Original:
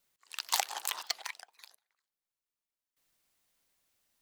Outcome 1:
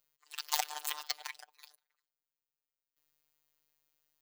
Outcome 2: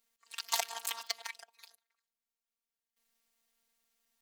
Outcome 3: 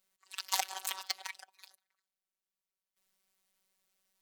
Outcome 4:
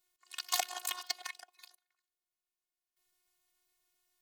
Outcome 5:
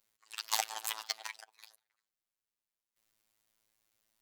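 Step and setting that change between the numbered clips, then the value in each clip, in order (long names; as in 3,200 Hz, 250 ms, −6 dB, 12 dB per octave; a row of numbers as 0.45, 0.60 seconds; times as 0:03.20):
phases set to zero, frequency: 150, 230, 190, 360, 110 Hertz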